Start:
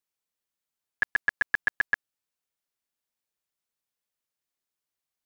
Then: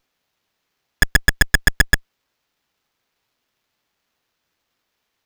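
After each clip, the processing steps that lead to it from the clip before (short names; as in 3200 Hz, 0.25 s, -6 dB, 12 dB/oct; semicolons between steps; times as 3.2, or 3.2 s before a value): self-modulated delay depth 0.35 ms; tilt +4.5 dB/oct; running maximum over 5 samples; gain +1.5 dB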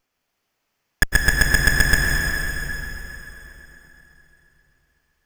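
bell 3800 Hz -8 dB 0.32 oct; plate-style reverb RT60 3.7 s, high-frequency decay 0.9×, pre-delay 95 ms, DRR -0.5 dB; gain -2 dB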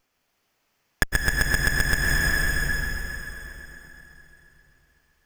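compressor 10:1, threshold -20 dBFS, peak gain reduction 11 dB; gain +3 dB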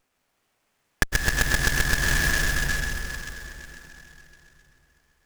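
noise-modulated delay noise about 4000 Hz, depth 0.046 ms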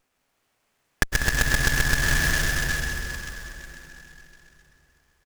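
echo 0.195 s -10.5 dB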